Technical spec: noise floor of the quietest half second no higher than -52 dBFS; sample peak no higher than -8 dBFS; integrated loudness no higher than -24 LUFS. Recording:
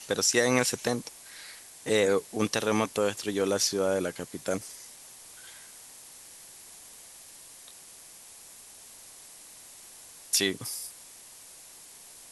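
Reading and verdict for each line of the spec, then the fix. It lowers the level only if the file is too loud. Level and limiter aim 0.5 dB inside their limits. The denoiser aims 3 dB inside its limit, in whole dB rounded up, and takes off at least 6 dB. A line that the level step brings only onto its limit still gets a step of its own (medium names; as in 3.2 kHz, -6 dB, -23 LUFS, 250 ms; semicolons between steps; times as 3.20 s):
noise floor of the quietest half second -50 dBFS: fail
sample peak -10.0 dBFS: pass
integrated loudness -28.0 LUFS: pass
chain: noise reduction 6 dB, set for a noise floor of -50 dBFS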